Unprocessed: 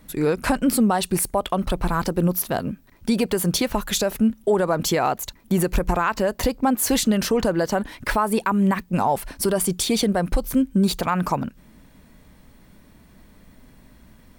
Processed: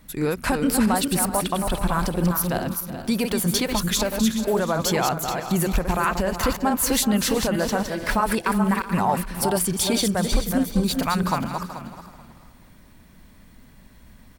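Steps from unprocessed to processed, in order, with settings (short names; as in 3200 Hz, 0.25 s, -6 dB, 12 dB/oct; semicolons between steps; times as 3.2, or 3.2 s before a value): regenerating reverse delay 0.216 s, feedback 44%, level -5 dB; bell 410 Hz -4.5 dB 1.9 oct; feedback echo 0.375 s, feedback 29%, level -15.5 dB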